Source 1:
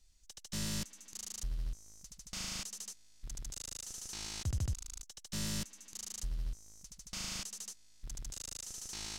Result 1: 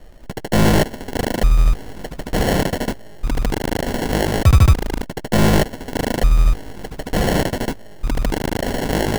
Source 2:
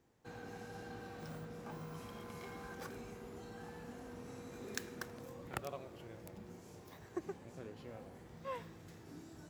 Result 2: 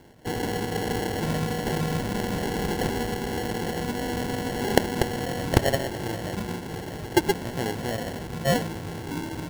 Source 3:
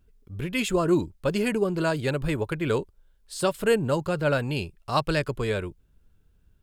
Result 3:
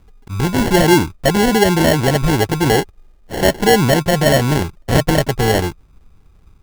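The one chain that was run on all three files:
in parallel at +3 dB: brickwall limiter −20.5 dBFS
on the sum: decimation without filtering 36×
normalise the peak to −2 dBFS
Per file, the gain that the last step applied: +16.5, +13.5, +6.0 decibels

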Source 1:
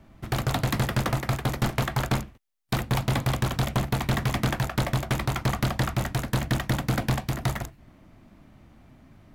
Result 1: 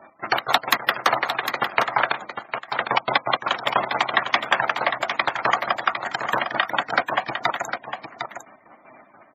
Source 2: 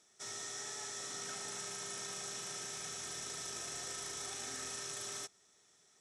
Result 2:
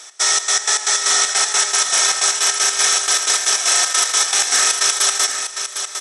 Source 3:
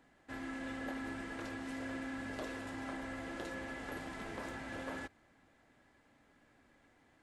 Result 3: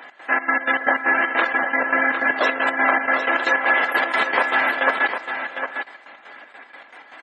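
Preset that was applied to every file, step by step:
gate on every frequency bin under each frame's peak −25 dB strong
high-pass filter 780 Hz 12 dB per octave
notch filter 7,000 Hz, Q 23
in parallel at +2 dB: downward compressor, threshold −44 dBFS
on the sum: gate pattern "x.xx.x.x." 156 BPM −12 dB
on a send: single-tap delay 755 ms −8 dB
on the sum: normalise the peak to −1.5 dBFS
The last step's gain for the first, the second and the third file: +12.0, +24.0, +23.5 decibels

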